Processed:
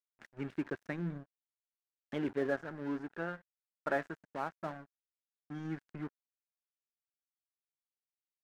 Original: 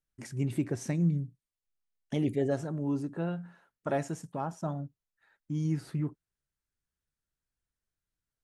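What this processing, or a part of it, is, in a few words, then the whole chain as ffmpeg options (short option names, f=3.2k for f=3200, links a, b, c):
pocket radio on a weak battery: -af "highpass=250,lowpass=3.1k,aeval=exprs='sgn(val(0))*max(abs(val(0))-0.00531,0)':c=same,equalizer=f=1.6k:t=o:w=0.58:g=10.5,volume=-2.5dB"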